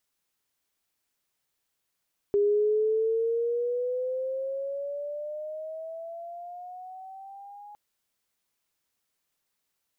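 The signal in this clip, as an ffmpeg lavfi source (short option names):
-f lavfi -i "aevalsrc='pow(10,(-19.5-23.5*t/5.41)/20)*sin(2*PI*405*5.41/(12.5*log(2)/12)*(exp(12.5*log(2)/12*t/5.41)-1))':d=5.41:s=44100"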